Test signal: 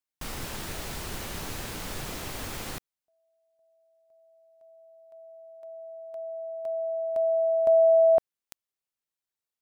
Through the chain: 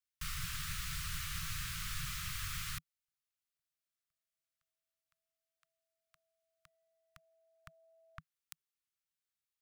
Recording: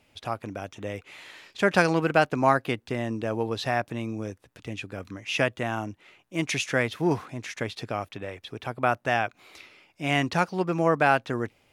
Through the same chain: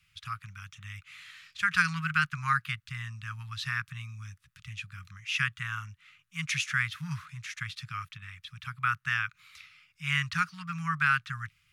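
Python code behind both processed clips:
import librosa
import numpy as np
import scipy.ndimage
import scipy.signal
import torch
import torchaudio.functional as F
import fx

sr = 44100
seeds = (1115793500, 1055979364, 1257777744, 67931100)

y = fx.dynamic_eq(x, sr, hz=1500.0, q=1.4, threshold_db=-38.0, ratio=4.0, max_db=4)
y = scipy.signal.sosfilt(scipy.signal.cheby1(4, 1.0, [160.0, 1200.0], 'bandstop', fs=sr, output='sos'), y)
y = y * 10.0 ** (-2.5 / 20.0)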